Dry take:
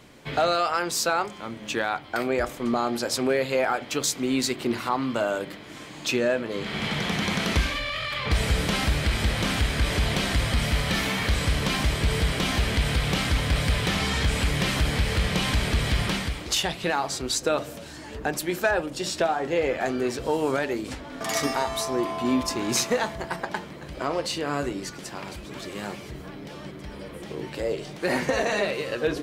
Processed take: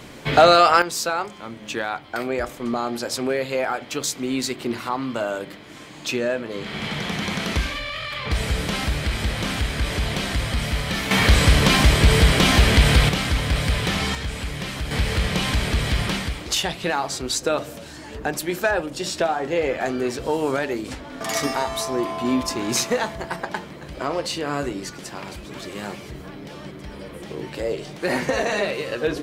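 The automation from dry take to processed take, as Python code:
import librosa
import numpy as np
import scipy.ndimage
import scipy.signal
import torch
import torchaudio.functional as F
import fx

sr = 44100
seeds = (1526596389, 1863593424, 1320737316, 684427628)

y = fx.gain(x, sr, db=fx.steps((0.0, 10.0), (0.82, 0.0), (11.11, 9.0), (13.09, 2.0), (14.15, -5.0), (14.91, 2.0)))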